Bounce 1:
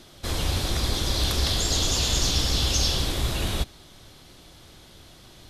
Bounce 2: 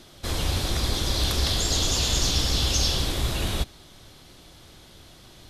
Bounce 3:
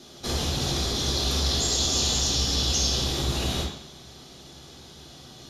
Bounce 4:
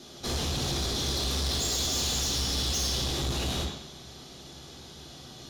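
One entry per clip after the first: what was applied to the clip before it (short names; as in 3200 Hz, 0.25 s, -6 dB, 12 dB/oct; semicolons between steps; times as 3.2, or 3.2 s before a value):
nothing audible
compressor, threshold -24 dBFS, peak gain reduction 6.5 dB; reverb RT60 0.75 s, pre-delay 3 ms, DRR -3 dB; gain -3.5 dB
soft clip -25 dBFS, distortion -11 dB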